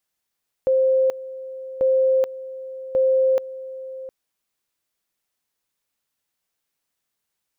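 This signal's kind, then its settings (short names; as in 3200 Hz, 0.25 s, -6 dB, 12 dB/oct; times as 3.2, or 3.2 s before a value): two-level tone 525 Hz -14.5 dBFS, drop 16.5 dB, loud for 0.43 s, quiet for 0.71 s, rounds 3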